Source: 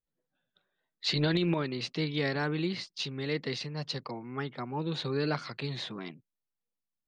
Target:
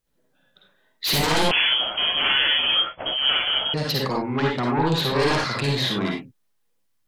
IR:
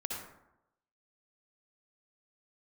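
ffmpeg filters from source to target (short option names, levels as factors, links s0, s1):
-filter_complex "[0:a]aeval=exprs='0.158*sin(PI/2*4.47*val(0)/0.158)':c=same[s0];[1:a]atrim=start_sample=2205,atrim=end_sample=6174,asetrate=52920,aresample=44100[s1];[s0][s1]afir=irnorm=-1:irlink=0,asettb=1/sr,asplit=3[s2][s3][s4];[s2]atrim=end=1.514[s5];[s3]atrim=start=1.51:end=3.74,asetpts=PTS-STARTPTS,afade=t=in:d=0.004:c=qsin,afade=t=out:st=2.226:d=0.004:c=qsin,lowpass=f=2900:t=q:w=0.5098,lowpass=f=2900:t=q:w=0.6013,lowpass=f=2900:t=q:w=0.9,lowpass=f=2900:t=q:w=2.563,afreqshift=-3400[s6];[s4]atrim=start=3.736[s7];[s5][s6]acrossfade=d=0.004:c1=hsin:c2=qsin[s8];[s8][s7]acrossfade=d=0.004:c1=qsin:c2=hsin"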